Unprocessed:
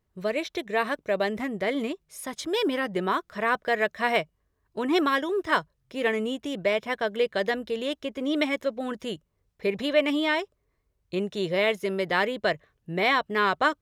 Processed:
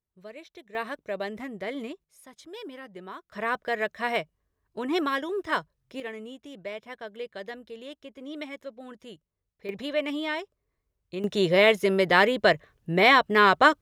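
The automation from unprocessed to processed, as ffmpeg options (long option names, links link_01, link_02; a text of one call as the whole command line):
ffmpeg -i in.wav -af "asetnsamples=nb_out_samples=441:pad=0,asendcmd='0.75 volume volume -6.5dB;2.04 volume volume -15dB;3.32 volume volume -3.5dB;6 volume volume -12dB;9.69 volume volume -5.5dB;11.24 volume volume 5dB',volume=-16dB" out.wav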